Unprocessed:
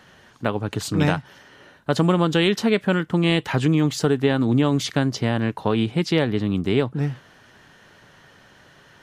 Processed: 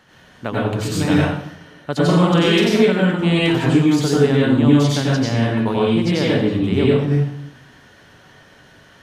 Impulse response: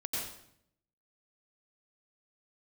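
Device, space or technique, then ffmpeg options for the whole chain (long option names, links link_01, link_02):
bathroom: -filter_complex "[1:a]atrim=start_sample=2205[link_01];[0:a][link_01]afir=irnorm=-1:irlink=0,asettb=1/sr,asplit=3[link_02][link_03][link_04];[link_02]atrim=end=2.044[link_05];[link_03]atrim=start=2.04:end=2.83,asetpts=PTS-STARTPTS,afade=type=in:duration=0.004:curve=qsin,afade=type=out:start_time=0.786:duration=0.004:curve=qsin,asplit=2[link_06][link_07];[link_07]adelay=47,volume=-5.5dB[link_08];[link_06][link_08]amix=inputs=2:normalize=0,atrim=end_sample=34839[link_09];[link_04]atrim=start=2.826[link_10];[link_05][link_09]acrossfade=duration=0.004:curve1=hsin:curve2=qsin[link_11];[link_11][link_10]acrossfade=duration=0.004:curve1=qsin:curve2=hsin"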